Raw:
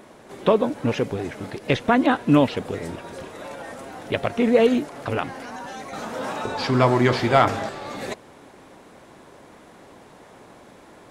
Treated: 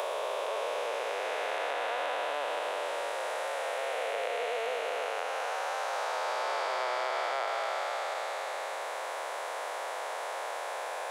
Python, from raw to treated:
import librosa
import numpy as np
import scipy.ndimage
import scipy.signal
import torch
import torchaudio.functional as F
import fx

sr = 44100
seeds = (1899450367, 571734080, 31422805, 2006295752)

y = fx.spec_blur(x, sr, span_ms=929.0)
y = scipy.signal.sosfilt(scipy.signal.butter(6, 530.0, 'highpass', fs=sr, output='sos'), y)
y = fx.band_squash(y, sr, depth_pct=100)